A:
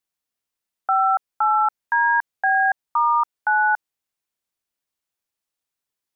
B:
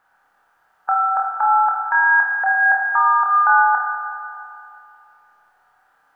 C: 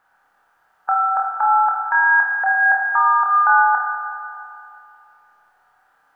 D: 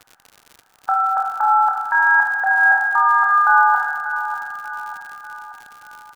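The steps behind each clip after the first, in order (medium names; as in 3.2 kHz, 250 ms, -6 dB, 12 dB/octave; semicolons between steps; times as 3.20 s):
spectral levelling over time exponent 0.6; flutter echo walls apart 4.4 m, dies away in 0.32 s; Schroeder reverb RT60 2.6 s, combs from 25 ms, DRR 1 dB
no audible change
crackle 99 per s -30 dBFS; feedback delay 590 ms, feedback 51%, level -11 dB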